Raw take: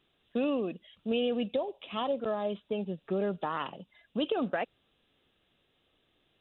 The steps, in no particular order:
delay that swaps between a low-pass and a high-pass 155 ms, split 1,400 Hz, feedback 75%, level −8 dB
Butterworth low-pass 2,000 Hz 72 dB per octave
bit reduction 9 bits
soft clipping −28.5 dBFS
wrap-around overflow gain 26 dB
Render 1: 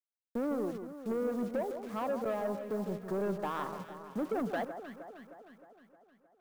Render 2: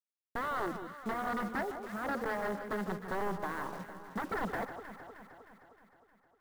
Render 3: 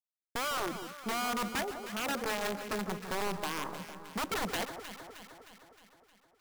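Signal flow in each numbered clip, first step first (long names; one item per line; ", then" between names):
Butterworth low-pass, then bit reduction, then soft clipping, then wrap-around overflow, then delay that swaps between a low-pass and a high-pass
wrap-around overflow, then Butterworth low-pass, then soft clipping, then bit reduction, then delay that swaps between a low-pass and a high-pass
Butterworth low-pass, then bit reduction, then wrap-around overflow, then soft clipping, then delay that swaps between a low-pass and a high-pass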